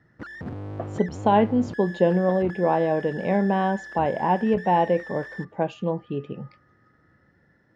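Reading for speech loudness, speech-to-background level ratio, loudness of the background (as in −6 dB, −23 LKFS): −23.5 LKFS, 14.5 dB, −38.0 LKFS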